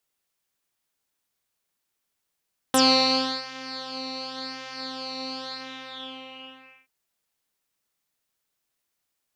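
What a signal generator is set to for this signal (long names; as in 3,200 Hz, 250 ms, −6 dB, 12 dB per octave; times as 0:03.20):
subtractive patch with pulse-width modulation C4, sub −29 dB, filter lowpass, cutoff 2,400 Hz, Q 11, filter envelope 2.5 octaves, filter decay 0.06 s, filter sustain 35%, attack 1.3 ms, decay 0.68 s, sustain −17.5 dB, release 1.42 s, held 2.71 s, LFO 0.92 Hz, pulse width 11%, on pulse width 5%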